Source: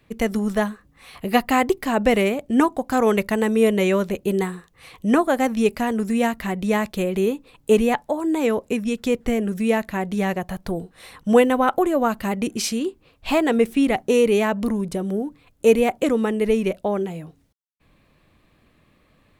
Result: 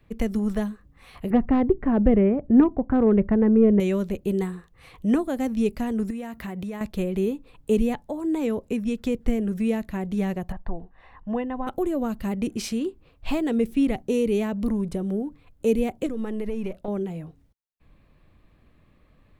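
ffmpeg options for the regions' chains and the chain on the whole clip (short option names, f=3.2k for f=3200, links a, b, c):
-filter_complex "[0:a]asettb=1/sr,asplit=3[a][b][c];[a]atrim=end=1.304[d];[b]atrim=start=1.3:end=3.8,asetpts=PTS-STARTPTS,afade=t=in:d=0.004:c=qsin,afade=t=out:st=2.496:d=0.004:c=qsin,lowpass=f=1.7k:w=0.5412,lowpass=f=1.7k:w=1.3066,acontrast=56[e];[c]atrim=start=3.796[f];[d][e]acrossfade=d=0.004:c1=hsin:c2=qsin[g];[g][f]acrossfade=d=0.004:c1=qsin:c2=hsin,asettb=1/sr,asplit=3[h][i][j];[h]atrim=end=6.104[k];[i]atrim=start=6.1:end=6.81,asetpts=PTS-STARTPTS,afade=t=in:d=0.004:c=qsin,afade=t=out:st=0.706:d=0.004:c=qsin,highpass=73,highshelf=f=11k:g=8,acompressor=threshold=-27dB:ratio=10:attack=3.2:release=140:knee=1:detection=peak[l];[j]atrim=start=6.806[m];[k][l]acrossfade=d=0.004:c1=hsin:c2=qsin[n];[n][m]acrossfade=d=0.004:c1=qsin:c2=hsin,asettb=1/sr,asplit=3[o][p][q];[o]atrim=end=10.524[r];[p]atrim=start=10.52:end=11.67,asetpts=PTS-STARTPTS,afade=t=in:d=0.004:c=qsin,afade=t=out:st=1.146:d=0.004:c=qsin,lowpass=1.6k,equalizer=f=140:t=o:w=2.3:g=-11.5,aecho=1:1:1.1:0.49,atrim=end_sample=50715[s];[q]atrim=start=11.666[t];[r][s]acrossfade=d=0.004:c1=hsin:c2=qsin[u];[u][t]acrossfade=d=0.004:c1=qsin:c2=hsin,asettb=1/sr,asplit=3[v][w][x];[v]atrim=end=16.064[y];[w]atrim=start=16.06:end=16.88,asetpts=PTS-STARTPTS,afade=t=in:d=0.004:c=qsin,afade=t=out:st=0.816:d=0.004:c=qsin,aeval=exprs='if(lt(val(0),0),0.708*val(0),val(0))':c=same,acompressor=threshold=-24dB:ratio=4:attack=3.2:release=140:knee=1:detection=peak[z];[x]atrim=start=16.876[aa];[y][z]acrossfade=d=0.004:c1=hsin:c2=qsin[ab];[ab][aa]acrossfade=d=0.004:c1=qsin:c2=hsin,equalizer=f=8.9k:t=o:w=2.8:g=-6.5,acrossover=split=430|3000[ac][ad][ae];[ad]acompressor=threshold=-34dB:ratio=3[af];[ac][af][ae]amix=inputs=3:normalize=0,lowshelf=f=83:g=11.5,volume=-3dB"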